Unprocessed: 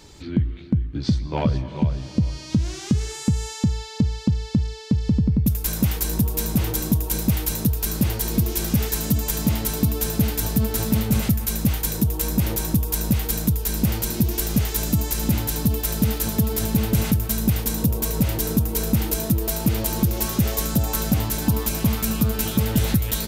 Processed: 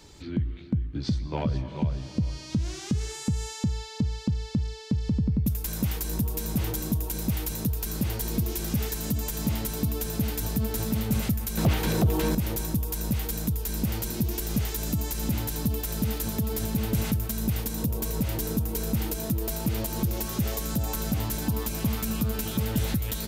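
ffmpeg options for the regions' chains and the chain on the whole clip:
ffmpeg -i in.wav -filter_complex "[0:a]asettb=1/sr,asplit=3[link_01][link_02][link_03];[link_01]atrim=end=11.574[link_04];[link_02]atrim=start=11.57:end=12.35,asetpts=PTS-STARTPTS,afade=type=in:duration=0.004:curve=qsin,afade=type=out:start_time=0.776:duration=0.004:curve=qsin,acrossover=split=3900[link_05][link_06];[link_06]acompressor=threshold=-40dB:ratio=4:attack=1:release=60[link_07];[link_05][link_07]amix=inputs=2:normalize=0,highpass=frequency=170:poles=1,aeval=exprs='0.299*sin(PI/2*2.82*val(0)/0.299)':channel_layout=same[link_08];[link_03]atrim=start=12.346[link_09];[link_04][link_08]acrossfade=duration=0.004:curve1=hsin:curve2=qsin[link_10];[link_10][link_09]acrossfade=duration=0.004:curve1=qsin:curve2=hsin,alimiter=limit=-11.5dB:level=0:latency=1:release=132,acrossover=split=430[link_11][link_12];[link_12]acompressor=threshold=-25dB:ratio=6[link_13];[link_11][link_13]amix=inputs=2:normalize=0,volume=-4dB" out.wav

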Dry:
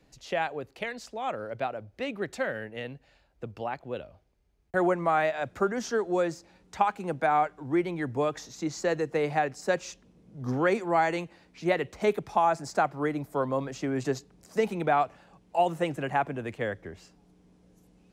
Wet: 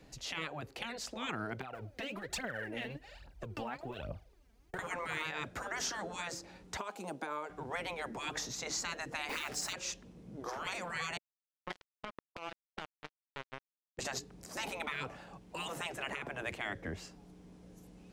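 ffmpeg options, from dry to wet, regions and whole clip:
ffmpeg -i in.wav -filter_complex "[0:a]asettb=1/sr,asplit=3[link_01][link_02][link_03];[link_01]atrim=end=1.614[link_04];[link_02]atrim=start=1.61:end=4.79,asetpts=PTS-STARTPTS,afade=type=in:duration=0.004:curve=qsin,afade=type=out:start_time=3.176:duration=0.004:curve=qsin,acompressor=threshold=-39dB:ratio=16:attack=3.2:release=140:knee=1:detection=peak,aphaser=in_gain=1:out_gain=1:delay=4.6:decay=0.73:speed=1.2:type=triangular[link_05];[link_03]atrim=start=4.786[link_06];[link_04][link_05]acrossfade=duration=0.004:curve1=hsin:curve2=qsin[link_07];[link_07][link_06]acrossfade=duration=0.004:curve1=qsin:curve2=hsin,asettb=1/sr,asplit=3[link_08][link_09][link_10];[link_08]atrim=end=6.774[link_11];[link_09]atrim=start=6.77:end=7.5,asetpts=PTS-STARTPTS,afade=type=in:duration=0.004:curve=qsin,afade=type=out:start_time=0.726:duration=0.004:curve=qsin,highpass=420,equalizer=frequency=1800:width=0.89:gain=-11.5,acompressor=threshold=-33dB:ratio=5:attack=3.2:release=140:knee=1:detection=peak[link_12];[link_10]atrim=start=7.496[link_13];[link_11][link_12]acrossfade=duration=0.004:curve1=hsin:curve2=qsin[link_14];[link_14][link_13]acrossfade=duration=0.004:curve1=qsin:curve2=hsin,asettb=1/sr,asplit=3[link_15][link_16][link_17];[link_15]atrim=end=9.294[link_18];[link_16]atrim=start=9.29:end=9.73,asetpts=PTS-STARTPTS,afade=type=in:duration=0.004:curve=qsin,afade=type=out:start_time=0.436:duration=0.004:curve=qsin,acontrast=52,acrusher=bits=7:mix=0:aa=0.5[link_19];[link_17]atrim=start=9.726[link_20];[link_18][link_19]acrossfade=duration=0.004:curve1=hsin:curve2=qsin[link_21];[link_21][link_20]acrossfade=duration=0.004:curve1=qsin:curve2=hsin,asettb=1/sr,asplit=3[link_22][link_23][link_24];[link_22]atrim=end=11.174[link_25];[link_23]atrim=start=11.17:end=13.99,asetpts=PTS-STARTPTS,afade=type=in:duration=0.004:curve=qsin,afade=type=out:start_time=2.816:duration=0.004:curve=qsin,lowpass=2200,acrusher=bits=2:mix=0:aa=0.5,acompressor=threshold=-35dB:ratio=5:attack=3.2:release=140:knee=1:detection=peak[link_26];[link_24]atrim=start=13.986[link_27];[link_25][link_26]acrossfade=duration=0.004:curve1=hsin:curve2=qsin[link_28];[link_28][link_27]acrossfade=duration=0.004:curve1=qsin:curve2=hsin,afftfilt=real='re*lt(hypot(re,im),0.0631)':imag='im*lt(hypot(re,im),0.0631)':win_size=1024:overlap=0.75,alimiter=level_in=6dB:limit=-24dB:level=0:latency=1:release=265,volume=-6dB,volume=4.5dB" out.wav

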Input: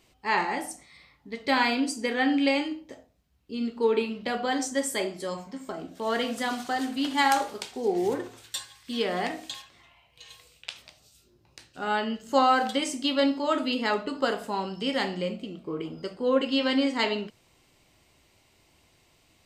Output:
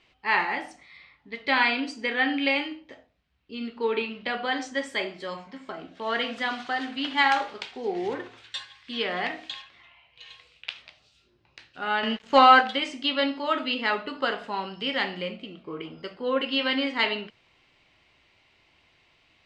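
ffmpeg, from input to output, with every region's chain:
ffmpeg -i in.wav -filter_complex "[0:a]asettb=1/sr,asplit=3[link_01][link_02][link_03];[link_01]atrim=end=12.034[link_04];[link_02]atrim=start=12.03:end=12.61,asetpts=PTS-STARTPTS,afade=type=in:duration=0.004:curve=qsin,afade=type=out:start_time=0.576:duration=0.004:curve=qsin,highpass=92,acontrast=85,aeval=exprs='sgn(val(0))*max(abs(val(0))-0.00944,0)':channel_layout=same[link_05];[link_03]atrim=start=12.606[link_06];[link_04][link_05]acrossfade=duration=0.004:curve1=hsin:curve2=qsin[link_07];[link_07][link_06]acrossfade=duration=0.004:curve1=qsin:curve2=hsin,lowpass=3700,equalizer=frequency=2500:width_type=o:width=2.8:gain=10.5,volume=-5dB" out.wav

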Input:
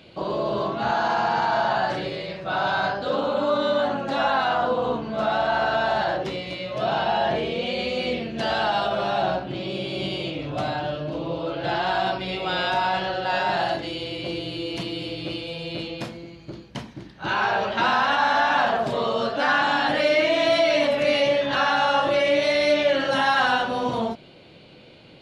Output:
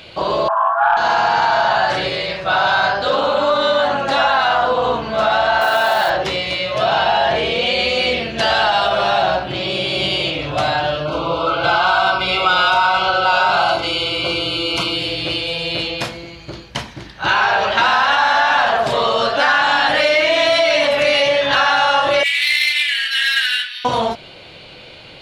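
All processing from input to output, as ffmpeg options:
ffmpeg -i in.wav -filter_complex "[0:a]asettb=1/sr,asplit=3[link_01][link_02][link_03];[link_01]atrim=end=0.484[link_04];[link_02]atrim=start=0.48:end=0.97,asetpts=PTS-STARTPTS,afade=type=in:duration=0.004:curve=qsin,afade=type=out:start_time=0.486:duration=0.004:curve=qsin,asuperpass=centerf=1100:order=20:qfactor=1,acontrast=41[link_05];[link_03]atrim=start=0.966[link_06];[link_04][link_05]acrossfade=duration=0.004:curve1=hsin:curve2=qsin[link_07];[link_07][link_06]acrossfade=duration=0.004:curve1=qsin:curve2=hsin,asettb=1/sr,asplit=3[link_08][link_09][link_10];[link_08]atrim=end=5.614[link_11];[link_09]atrim=start=5.61:end=6.1,asetpts=PTS-STARTPTS,afade=type=in:duration=0.004:curve=qsin,afade=type=out:start_time=0.486:duration=0.004:curve=qsin,highpass=180,acrusher=bits=6:mode=log:mix=0:aa=0.000001[link_12];[link_10]atrim=start=6.096[link_13];[link_11][link_12]acrossfade=duration=0.004:curve1=hsin:curve2=qsin[link_14];[link_14][link_13]acrossfade=duration=0.004:curve1=qsin:curve2=hsin,asettb=1/sr,asplit=3[link_15][link_16][link_17];[link_15]atrim=end=11.054[link_18];[link_16]atrim=start=11.05:end=14.96,asetpts=PTS-STARTPTS,afade=type=in:duration=0.004:curve=qsin,afade=type=out:start_time=3.906:duration=0.004:curve=qsin,asuperstop=centerf=1800:order=12:qfactor=3.8,equalizer=frequency=1300:width_type=o:width=0.63:gain=10,asplit=2[link_19][link_20];[link_20]adelay=45,volume=-13dB[link_21];[link_19][link_21]amix=inputs=2:normalize=0,atrim=end_sample=172431[link_22];[link_17]atrim=start=14.956[link_23];[link_18][link_22]acrossfade=duration=0.004:curve1=hsin:curve2=qsin[link_24];[link_24][link_23]acrossfade=duration=0.004:curve1=qsin:curve2=hsin,asettb=1/sr,asplit=3[link_25][link_26][link_27];[link_25]atrim=end=22.234[link_28];[link_26]atrim=start=22.23:end=23.85,asetpts=PTS-STARTPTS,afade=type=in:duration=0.004:curve=qsin,afade=type=out:start_time=1.616:duration=0.004:curve=qsin,asuperpass=centerf=3100:order=12:qfactor=0.82,adynamicsmooth=sensitivity=4.5:basefreq=4200[link_29];[link_27]atrim=start=23.846[link_30];[link_28][link_29]acrossfade=duration=0.004:curve1=hsin:curve2=qsin[link_31];[link_31][link_30]acrossfade=duration=0.004:curve1=qsin:curve2=hsin,acontrast=58,equalizer=frequency=230:width=0.56:gain=-12,acompressor=threshold=-20dB:ratio=3,volume=7.5dB" out.wav

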